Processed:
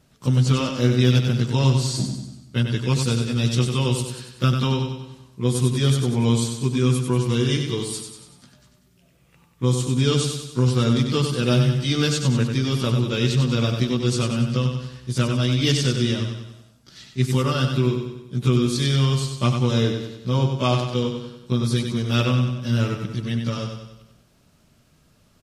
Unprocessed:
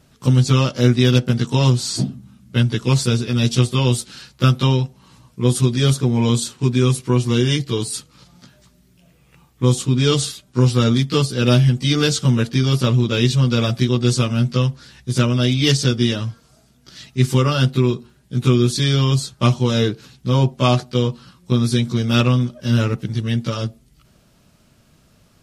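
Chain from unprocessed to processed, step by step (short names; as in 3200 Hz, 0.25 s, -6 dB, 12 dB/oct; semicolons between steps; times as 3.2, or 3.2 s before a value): feedback echo 95 ms, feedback 51%, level -6 dB; gain -5 dB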